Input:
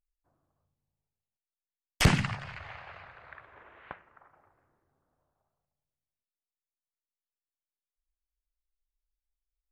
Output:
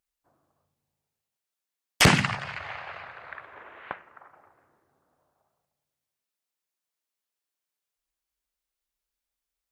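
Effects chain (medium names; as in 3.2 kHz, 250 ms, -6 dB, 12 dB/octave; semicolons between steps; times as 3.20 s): high-pass 240 Hz 6 dB/octave; trim +8 dB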